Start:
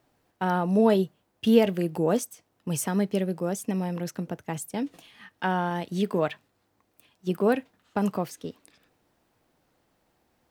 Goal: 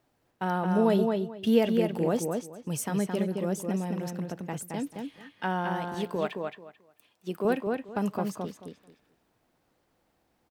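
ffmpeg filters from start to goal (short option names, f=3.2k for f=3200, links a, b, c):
-filter_complex "[0:a]asettb=1/sr,asplit=3[a][b][c];[a]atrim=end=5.944[d];[b]atrim=start=5.94:end=7.45,asetpts=PTS-STARTPTS,afade=t=in:d=0.004:c=qsin,afade=t=out:st=1.506:d=0.004:c=qsin,highpass=f=280:p=1[e];[c]atrim=start=7.446[f];[d][e]acrossfade=d=0.004:c1=hsin:c2=qsin[g];[g][f]acrossfade=d=0.004:c1=qsin:c2=hsin,asplit=2[h][i];[i]adelay=219,lowpass=f=4.3k:p=1,volume=-4dB,asplit=2[j][k];[k]adelay=219,lowpass=f=4.3k:p=1,volume=0.2,asplit=2[l][m];[m]adelay=219,lowpass=f=4.3k:p=1,volume=0.2[n];[h][j][l][n]amix=inputs=4:normalize=0,volume=-3.5dB"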